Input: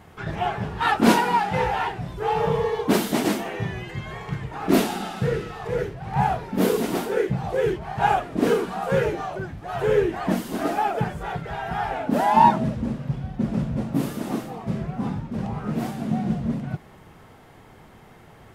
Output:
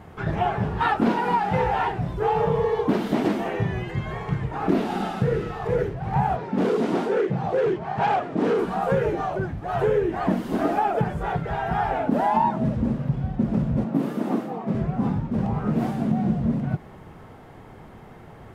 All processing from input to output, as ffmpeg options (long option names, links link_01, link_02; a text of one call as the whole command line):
ffmpeg -i in.wav -filter_complex "[0:a]asettb=1/sr,asplit=3[link_01][link_02][link_03];[link_01]atrim=end=6.364[link_04];[link_02]atrim=start=6.36:end=8.59,asetpts=PTS-STARTPTS,afade=type=in:duration=0.004:curve=qsin,afade=type=out:start_time=2.226:duration=0.004:curve=qsin,volume=19.5dB,asoftclip=hard,volume=-19.5dB,highpass=150,lowpass=7100[link_05];[link_03]atrim=start=8.586[link_06];[link_04][link_05]acrossfade=duration=0.004:curve1=hsin:curve2=qsin[link_07];[link_07][link_06]acrossfade=duration=0.004:curve1=qsin:curve2=hsin,asettb=1/sr,asplit=3[link_08][link_09][link_10];[link_08]atrim=end=13.844[link_11];[link_09]atrim=start=13.84:end=14.75,asetpts=PTS-STARTPTS,afade=type=in:duration=0.004:curve=qsin,afade=type=out:start_time=0.906:duration=0.004:curve=qsin,highpass=frequency=170:width=0.5412,highpass=frequency=170:width=1.3066,equalizer=frequency=10000:width_type=o:width=2.4:gain=-6[link_12];[link_10]atrim=start=14.746[link_13];[link_11][link_12]acrossfade=duration=0.004:curve1=hsin:curve2=qsin[link_14];[link_14][link_13]acrossfade=duration=0.004:curve1=qsin:curve2=hsin,acrossover=split=5100[link_15][link_16];[link_16]acompressor=threshold=-46dB:ratio=4:attack=1:release=60[link_17];[link_15][link_17]amix=inputs=2:normalize=0,highshelf=frequency=2100:gain=-10,acompressor=threshold=-23dB:ratio=6,volume=5dB" out.wav